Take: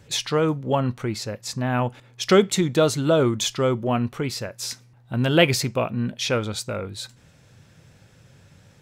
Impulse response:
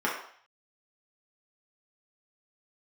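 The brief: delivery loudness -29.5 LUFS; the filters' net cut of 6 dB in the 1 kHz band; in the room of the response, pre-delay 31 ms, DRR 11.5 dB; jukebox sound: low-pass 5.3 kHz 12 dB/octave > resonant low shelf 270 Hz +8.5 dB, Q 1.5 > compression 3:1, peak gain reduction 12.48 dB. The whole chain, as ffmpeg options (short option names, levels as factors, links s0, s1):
-filter_complex "[0:a]equalizer=f=1000:t=o:g=-8,asplit=2[s0][s1];[1:a]atrim=start_sample=2205,adelay=31[s2];[s1][s2]afir=irnorm=-1:irlink=0,volume=0.0708[s3];[s0][s3]amix=inputs=2:normalize=0,lowpass=5300,lowshelf=f=270:t=q:w=1.5:g=8.5,acompressor=threshold=0.0562:ratio=3,volume=0.794"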